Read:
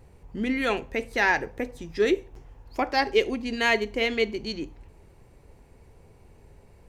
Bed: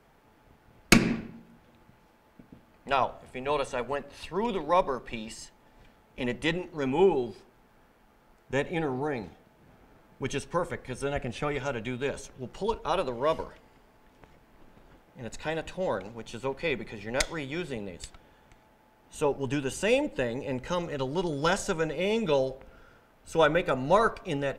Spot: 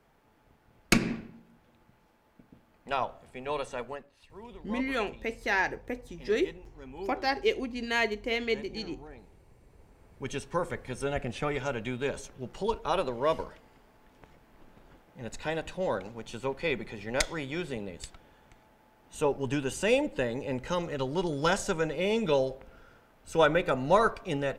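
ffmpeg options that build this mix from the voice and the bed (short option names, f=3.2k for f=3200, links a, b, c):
-filter_complex "[0:a]adelay=4300,volume=-5dB[a];[1:a]volume=12.5dB,afade=t=out:st=3.8:d=0.33:silence=0.223872,afade=t=in:st=9.61:d=1.09:silence=0.141254[b];[a][b]amix=inputs=2:normalize=0"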